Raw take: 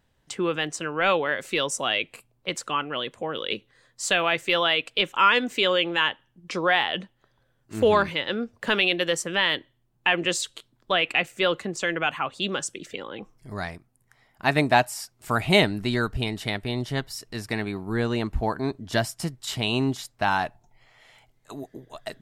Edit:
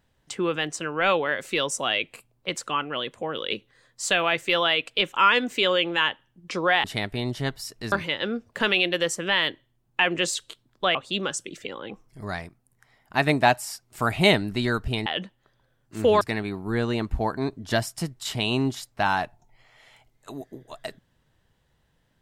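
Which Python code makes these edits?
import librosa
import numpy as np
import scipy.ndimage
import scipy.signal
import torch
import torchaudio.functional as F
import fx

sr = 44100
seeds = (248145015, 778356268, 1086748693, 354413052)

y = fx.edit(x, sr, fx.swap(start_s=6.84, length_s=1.15, other_s=16.35, other_length_s=1.08),
    fx.cut(start_s=11.02, length_s=1.22), tone=tone)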